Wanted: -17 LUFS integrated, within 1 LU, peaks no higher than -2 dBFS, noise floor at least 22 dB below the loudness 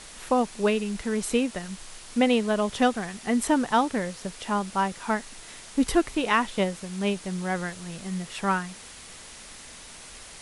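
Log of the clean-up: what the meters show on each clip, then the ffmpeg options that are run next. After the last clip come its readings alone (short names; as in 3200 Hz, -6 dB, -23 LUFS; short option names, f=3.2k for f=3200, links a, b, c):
noise floor -45 dBFS; noise floor target -49 dBFS; loudness -26.5 LUFS; peak -8.5 dBFS; loudness target -17.0 LUFS
-> -af "afftdn=nr=6:nf=-45"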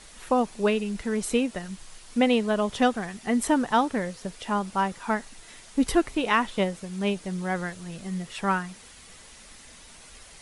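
noise floor -49 dBFS; loudness -26.5 LUFS; peak -8.5 dBFS; loudness target -17.0 LUFS
-> -af "volume=9.5dB,alimiter=limit=-2dB:level=0:latency=1"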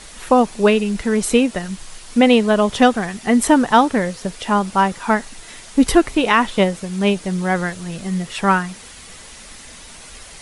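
loudness -17.5 LUFS; peak -2.0 dBFS; noise floor -40 dBFS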